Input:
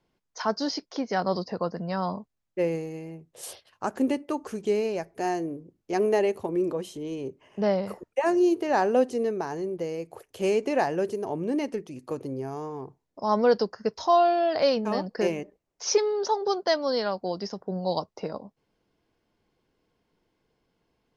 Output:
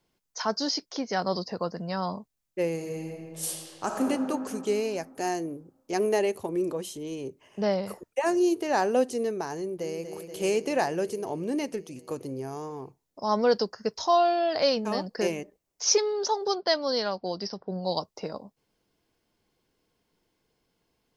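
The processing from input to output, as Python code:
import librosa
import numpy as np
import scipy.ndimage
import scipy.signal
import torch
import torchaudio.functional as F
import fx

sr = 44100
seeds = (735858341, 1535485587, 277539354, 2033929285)

y = fx.reverb_throw(x, sr, start_s=2.74, length_s=1.33, rt60_s=2.6, drr_db=0.5)
y = fx.echo_throw(y, sr, start_s=9.57, length_s=0.48, ms=240, feedback_pct=80, wet_db=-8.5)
y = fx.resample_bad(y, sr, factor=4, down='none', up='filtered', at=(16.55, 17.84))
y = fx.high_shelf(y, sr, hz=4500.0, db=11.5)
y = y * 10.0 ** (-2.0 / 20.0)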